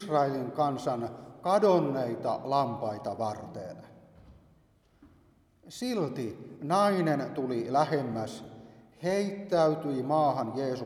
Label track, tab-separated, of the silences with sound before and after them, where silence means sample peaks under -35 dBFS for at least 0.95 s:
3.720000	5.740000	silence